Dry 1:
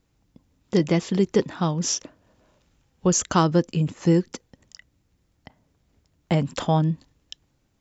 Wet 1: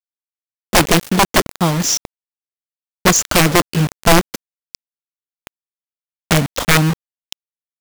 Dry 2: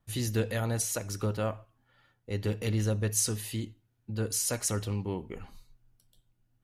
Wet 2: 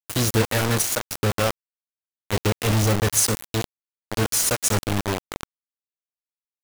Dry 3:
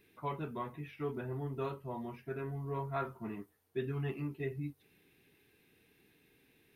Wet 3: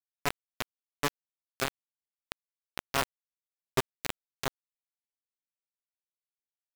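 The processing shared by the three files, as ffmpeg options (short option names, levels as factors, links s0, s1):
-af "aeval=exprs='(mod(4.47*val(0)+1,2)-1)/4.47':c=same,asubboost=boost=2.5:cutoff=73,acrusher=bits=4:mix=0:aa=0.000001,volume=2.51"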